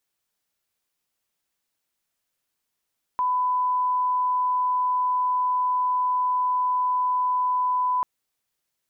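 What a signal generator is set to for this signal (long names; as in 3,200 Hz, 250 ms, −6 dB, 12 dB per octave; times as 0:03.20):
line-up tone −20 dBFS 4.84 s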